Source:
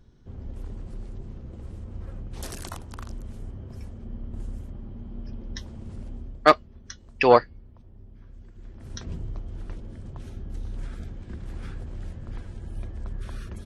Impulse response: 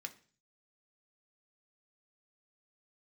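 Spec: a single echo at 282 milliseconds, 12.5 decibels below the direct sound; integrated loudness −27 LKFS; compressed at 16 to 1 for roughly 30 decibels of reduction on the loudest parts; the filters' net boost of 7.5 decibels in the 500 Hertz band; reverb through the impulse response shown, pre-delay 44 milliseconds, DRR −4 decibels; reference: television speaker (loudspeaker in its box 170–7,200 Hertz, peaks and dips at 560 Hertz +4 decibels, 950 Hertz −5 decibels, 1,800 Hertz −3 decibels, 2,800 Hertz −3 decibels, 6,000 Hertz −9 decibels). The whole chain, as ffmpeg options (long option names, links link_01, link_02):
-filter_complex "[0:a]equalizer=frequency=500:width_type=o:gain=6.5,acompressor=threshold=-36dB:ratio=16,aecho=1:1:282:0.237,asplit=2[link_01][link_02];[1:a]atrim=start_sample=2205,adelay=44[link_03];[link_02][link_03]afir=irnorm=-1:irlink=0,volume=6.5dB[link_04];[link_01][link_04]amix=inputs=2:normalize=0,highpass=frequency=170:width=0.5412,highpass=frequency=170:width=1.3066,equalizer=frequency=560:width_type=q:width=4:gain=4,equalizer=frequency=950:width_type=q:width=4:gain=-5,equalizer=frequency=1800:width_type=q:width=4:gain=-3,equalizer=frequency=2800:width_type=q:width=4:gain=-3,equalizer=frequency=6000:width_type=q:width=4:gain=-9,lowpass=frequency=7200:width=0.5412,lowpass=frequency=7200:width=1.3066,volume=17dB"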